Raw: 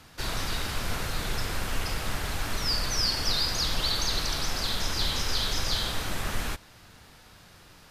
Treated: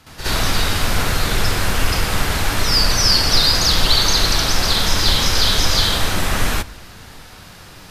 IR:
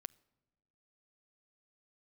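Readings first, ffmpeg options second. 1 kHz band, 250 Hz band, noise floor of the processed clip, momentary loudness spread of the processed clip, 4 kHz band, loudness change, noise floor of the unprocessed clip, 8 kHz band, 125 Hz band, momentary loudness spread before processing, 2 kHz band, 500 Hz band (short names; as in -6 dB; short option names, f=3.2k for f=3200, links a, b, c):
+12.5 dB, +12.5 dB, -40 dBFS, 7 LU, +12.5 dB, +12.5 dB, -53 dBFS, +12.5 dB, +12.5 dB, 7 LU, +12.5 dB, +12.5 dB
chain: -filter_complex "[0:a]asplit=2[a][b];[1:a]atrim=start_sample=2205,asetrate=28224,aresample=44100,adelay=65[c];[b][c]afir=irnorm=-1:irlink=0,volume=13dB[d];[a][d]amix=inputs=2:normalize=0,volume=2dB"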